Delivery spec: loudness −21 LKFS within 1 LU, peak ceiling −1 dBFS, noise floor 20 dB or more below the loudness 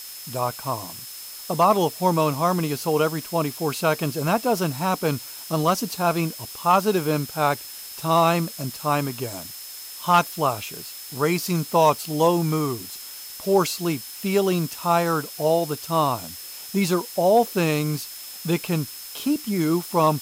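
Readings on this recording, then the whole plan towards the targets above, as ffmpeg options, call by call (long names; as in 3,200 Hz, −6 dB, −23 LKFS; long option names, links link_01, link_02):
interfering tone 5,200 Hz; level of the tone −42 dBFS; background noise floor −38 dBFS; target noise floor −43 dBFS; integrated loudness −23.0 LKFS; sample peak −7.5 dBFS; target loudness −21.0 LKFS
→ -af "bandreject=frequency=5200:width=30"
-af "afftdn=noise_reduction=6:noise_floor=-38"
-af "volume=2dB"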